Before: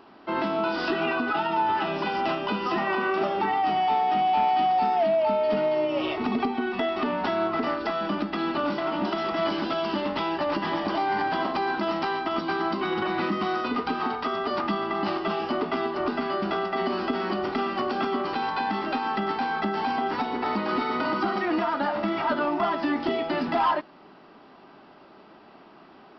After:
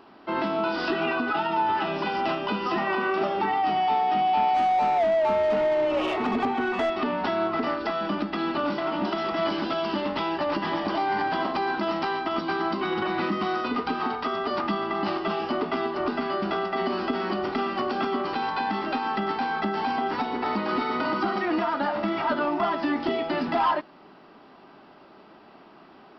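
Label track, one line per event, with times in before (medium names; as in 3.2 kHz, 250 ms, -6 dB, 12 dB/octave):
4.540000	6.900000	overdrive pedal drive 16 dB, tone 1.5 kHz, clips at -17 dBFS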